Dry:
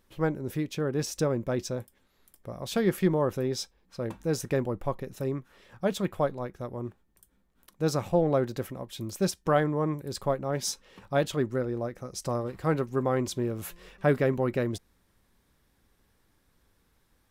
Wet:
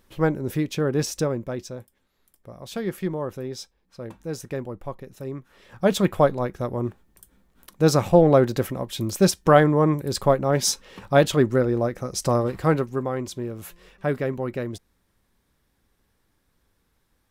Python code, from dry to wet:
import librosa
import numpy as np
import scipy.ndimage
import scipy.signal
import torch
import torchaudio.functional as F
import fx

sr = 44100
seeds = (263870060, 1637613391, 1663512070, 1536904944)

y = fx.gain(x, sr, db=fx.line((1.01, 6.0), (1.66, -3.0), (5.24, -3.0), (5.94, 9.0), (12.55, 9.0), (13.12, -1.0)))